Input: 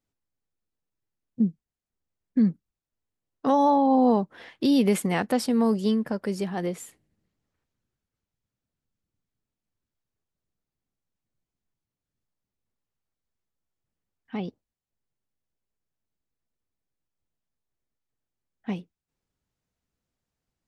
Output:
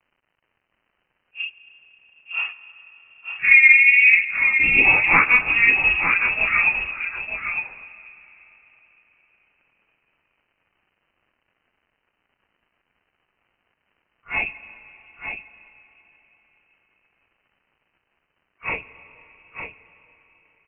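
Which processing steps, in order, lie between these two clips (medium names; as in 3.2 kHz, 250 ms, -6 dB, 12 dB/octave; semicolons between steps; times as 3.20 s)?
phase randomisation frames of 100 ms; high-pass 450 Hz 24 dB/octave; level rider gain up to 15 dB; crackle 270 per s -50 dBFS; delay 907 ms -7.5 dB; on a send at -15.5 dB: reverberation RT60 4.2 s, pre-delay 95 ms; on the sum: frequency inversion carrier 3 kHz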